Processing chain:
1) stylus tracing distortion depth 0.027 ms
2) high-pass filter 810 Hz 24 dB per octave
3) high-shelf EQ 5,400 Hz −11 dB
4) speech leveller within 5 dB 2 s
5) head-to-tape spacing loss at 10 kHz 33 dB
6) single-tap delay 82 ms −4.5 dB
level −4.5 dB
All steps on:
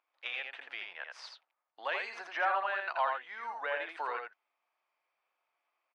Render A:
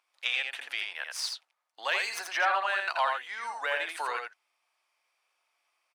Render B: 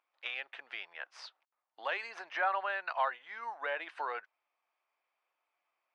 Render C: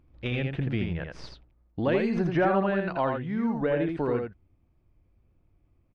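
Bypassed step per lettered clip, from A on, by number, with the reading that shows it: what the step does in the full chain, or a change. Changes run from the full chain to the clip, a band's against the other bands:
5, 4 kHz band +8.0 dB
6, change in integrated loudness −1.5 LU
2, 250 Hz band +33.5 dB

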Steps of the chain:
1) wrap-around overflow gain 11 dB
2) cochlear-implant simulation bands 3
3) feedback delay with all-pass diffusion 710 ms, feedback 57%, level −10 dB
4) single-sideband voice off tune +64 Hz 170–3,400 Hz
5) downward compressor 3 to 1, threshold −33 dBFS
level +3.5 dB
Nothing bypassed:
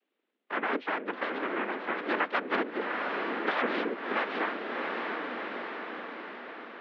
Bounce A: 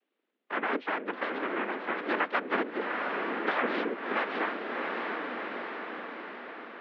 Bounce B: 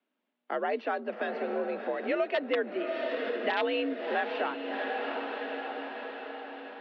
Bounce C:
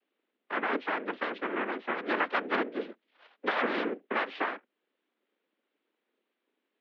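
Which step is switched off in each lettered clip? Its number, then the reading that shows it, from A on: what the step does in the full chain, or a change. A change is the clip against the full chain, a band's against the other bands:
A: 1, distortion level −10 dB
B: 2, 500 Hz band +5.0 dB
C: 3, change in momentary loudness spread −3 LU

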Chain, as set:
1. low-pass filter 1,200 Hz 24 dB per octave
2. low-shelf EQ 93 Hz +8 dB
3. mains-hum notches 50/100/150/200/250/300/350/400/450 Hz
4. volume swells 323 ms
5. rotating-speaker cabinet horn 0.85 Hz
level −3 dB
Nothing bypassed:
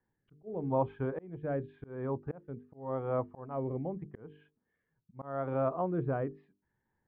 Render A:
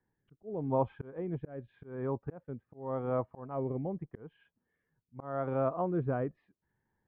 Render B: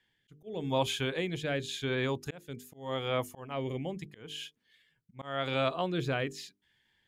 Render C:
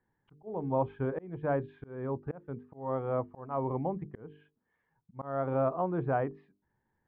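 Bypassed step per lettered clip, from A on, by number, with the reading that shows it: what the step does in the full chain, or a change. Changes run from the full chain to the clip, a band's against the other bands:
3, change in momentary loudness spread +1 LU
1, 2 kHz band +13.0 dB
5, 2 kHz band +3.0 dB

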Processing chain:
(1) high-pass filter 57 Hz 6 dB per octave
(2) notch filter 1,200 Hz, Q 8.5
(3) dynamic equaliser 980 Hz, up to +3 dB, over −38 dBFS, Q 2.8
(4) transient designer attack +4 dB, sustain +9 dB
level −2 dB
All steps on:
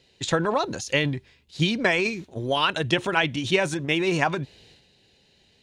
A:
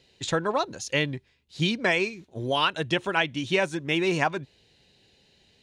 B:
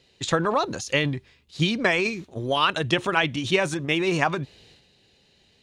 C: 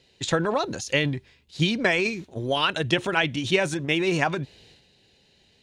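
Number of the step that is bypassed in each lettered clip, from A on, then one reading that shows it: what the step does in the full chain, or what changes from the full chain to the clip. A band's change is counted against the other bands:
4, 125 Hz band −1.5 dB
2, change in momentary loudness spread −2 LU
3, 1 kHz band −1.5 dB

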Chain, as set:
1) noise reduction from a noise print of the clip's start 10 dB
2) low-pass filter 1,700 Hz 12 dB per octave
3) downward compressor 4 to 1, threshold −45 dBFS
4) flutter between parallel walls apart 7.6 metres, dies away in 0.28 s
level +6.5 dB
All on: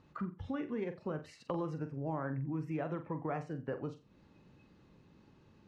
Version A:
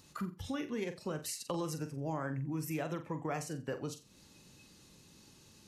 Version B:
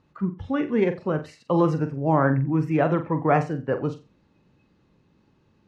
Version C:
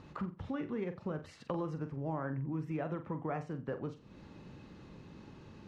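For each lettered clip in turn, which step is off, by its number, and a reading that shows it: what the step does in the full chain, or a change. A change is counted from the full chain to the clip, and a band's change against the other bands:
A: 2, 2 kHz band +3.0 dB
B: 3, average gain reduction 13.5 dB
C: 1, change in momentary loudness spread +11 LU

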